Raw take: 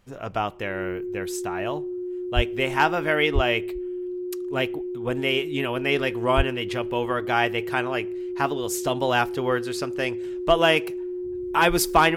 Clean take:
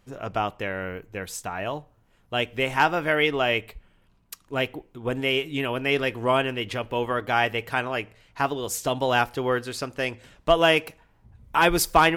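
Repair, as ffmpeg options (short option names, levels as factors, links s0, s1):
-filter_complex "[0:a]bandreject=f=360:w=30,asplit=3[s0][s1][s2];[s0]afade=t=out:st=2.35:d=0.02[s3];[s1]highpass=f=140:w=0.5412,highpass=f=140:w=1.3066,afade=t=in:st=2.35:d=0.02,afade=t=out:st=2.47:d=0.02[s4];[s2]afade=t=in:st=2.47:d=0.02[s5];[s3][s4][s5]amix=inputs=3:normalize=0,asplit=3[s6][s7][s8];[s6]afade=t=out:st=3.34:d=0.02[s9];[s7]highpass=f=140:w=0.5412,highpass=f=140:w=1.3066,afade=t=in:st=3.34:d=0.02,afade=t=out:st=3.46:d=0.02[s10];[s8]afade=t=in:st=3.46:d=0.02[s11];[s9][s10][s11]amix=inputs=3:normalize=0,asplit=3[s12][s13][s14];[s12]afade=t=out:st=6.36:d=0.02[s15];[s13]highpass=f=140:w=0.5412,highpass=f=140:w=1.3066,afade=t=in:st=6.36:d=0.02,afade=t=out:st=6.48:d=0.02[s16];[s14]afade=t=in:st=6.48:d=0.02[s17];[s15][s16][s17]amix=inputs=3:normalize=0"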